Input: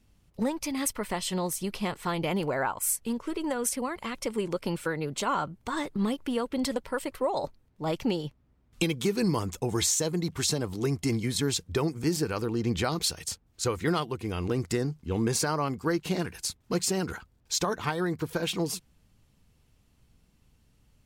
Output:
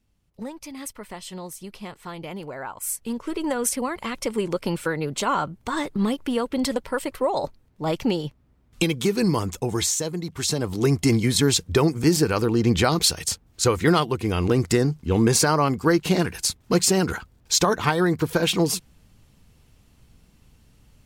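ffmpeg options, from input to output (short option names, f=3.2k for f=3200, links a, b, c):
-af "volume=15dB,afade=t=in:st=2.62:d=0.84:silence=0.281838,afade=t=out:st=9.46:d=0.84:silence=0.473151,afade=t=in:st=10.3:d=0.61:silence=0.316228"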